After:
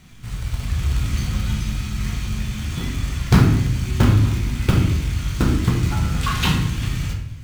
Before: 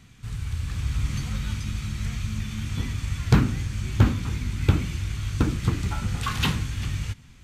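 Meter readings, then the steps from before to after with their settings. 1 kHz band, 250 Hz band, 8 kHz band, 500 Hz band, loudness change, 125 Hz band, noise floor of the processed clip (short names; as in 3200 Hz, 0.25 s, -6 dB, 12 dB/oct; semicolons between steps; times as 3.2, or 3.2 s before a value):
+6.0 dB, +6.5 dB, +5.5 dB, +6.0 dB, +6.0 dB, +6.0 dB, -32 dBFS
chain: in parallel at -4 dB: companded quantiser 4-bit; on the sum: shoebox room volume 200 m³, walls mixed, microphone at 0.97 m; gain -2 dB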